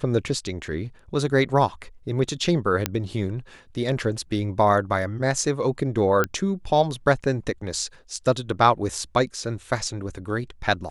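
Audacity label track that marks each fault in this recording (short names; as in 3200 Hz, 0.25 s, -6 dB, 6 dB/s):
2.860000	2.860000	pop -5 dBFS
6.240000	6.240000	pop -9 dBFS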